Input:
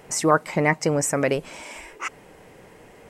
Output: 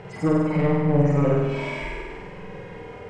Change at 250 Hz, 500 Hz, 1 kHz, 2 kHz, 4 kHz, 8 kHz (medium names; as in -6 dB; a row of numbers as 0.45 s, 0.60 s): +4.5 dB, 0.0 dB, -5.5 dB, -6.0 dB, -7.0 dB, under -20 dB